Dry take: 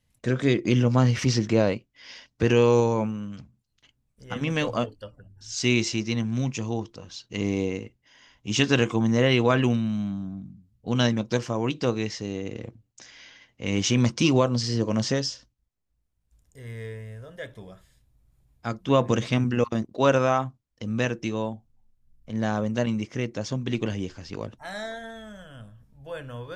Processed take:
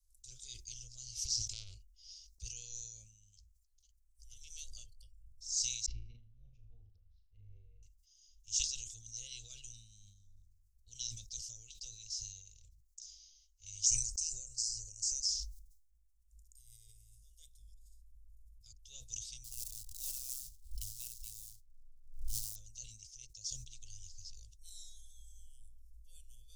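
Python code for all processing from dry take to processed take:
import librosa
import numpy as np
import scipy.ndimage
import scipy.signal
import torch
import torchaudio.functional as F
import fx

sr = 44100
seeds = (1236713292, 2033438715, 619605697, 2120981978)

y = fx.chain(x, sr, fx.low_shelf(hz=410.0, db=10.0),
    fx.small_body(hz=(370.0, 790.0, 2900.0), ring_ms=90, db=13),
    fx.transformer_sat(knee_hz=1600.0), at=(1.53, 2.12))
y = fx.chain(y, sr, fx.lowpass(hz=1400.0, slope=24),
    fx.room_flutter(wall_m=6.6, rt60_s=0.47), at=(5.86, 7.83))
y = fx.chain(y, sr, fx.peak_eq(hz=7500.0, db=9.5, octaves=0.55),
    fx.fixed_phaser(hz=920.0, stages=6), at=(13.86, 15.25))
y = fx.chain(y, sr, fx.low_shelf(hz=61.0, db=8.5),
    fx.level_steps(step_db=15), at=(17.62, 18.83))
y = fx.chain(y, sr, fx.moving_average(points=7),
    fx.quant_float(bits=2),
    fx.pre_swell(db_per_s=100.0), at=(19.44, 22.56))
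y = scipy.signal.sosfilt(scipy.signal.cheby2(4, 60, [140.0, 1900.0], 'bandstop', fs=sr, output='sos'), y)
y = fx.high_shelf(y, sr, hz=3000.0, db=-8.0)
y = fx.sustainer(y, sr, db_per_s=61.0)
y = F.gain(torch.from_numpy(y), 7.0).numpy()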